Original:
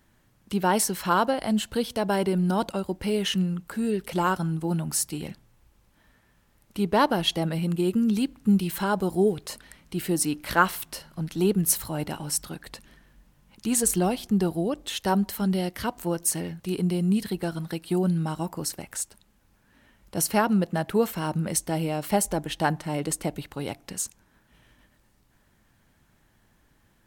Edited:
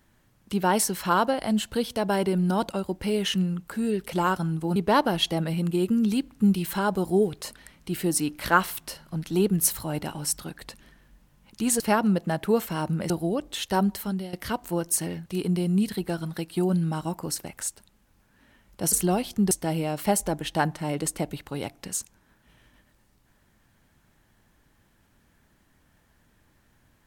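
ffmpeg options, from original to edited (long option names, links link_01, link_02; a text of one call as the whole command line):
ffmpeg -i in.wav -filter_complex "[0:a]asplit=7[link_01][link_02][link_03][link_04][link_05][link_06][link_07];[link_01]atrim=end=4.762[link_08];[link_02]atrim=start=6.808:end=13.852[link_09];[link_03]atrim=start=20.258:end=21.562[link_10];[link_04]atrim=start=14.438:end=15.67,asetpts=PTS-STARTPTS,afade=type=out:start_time=0.842:duration=0.39:silence=0.177828[link_11];[link_05]atrim=start=15.67:end=20.262,asetpts=PTS-STARTPTS,afade=type=in:duration=0.004:curve=hsin:silence=0.177828[link_12];[link_06]atrim=start=13.848:end=14.442[link_13];[link_07]atrim=start=21.558[link_14];[link_08][link_09]acrossfade=duration=0.004:curve1=hsin:curve2=hsin[link_15];[link_15][link_10]acrossfade=duration=0.004:curve1=hsin:curve2=hsin[link_16];[link_11][link_12]concat=n=2:v=0:a=1[link_17];[link_16][link_17]acrossfade=duration=0.004:curve1=hsin:curve2=hsin[link_18];[link_18][link_13]acrossfade=duration=0.004:curve1=hsin:curve2=hsin[link_19];[link_19][link_14]acrossfade=duration=0.004:curve1=hsin:curve2=hsin" out.wav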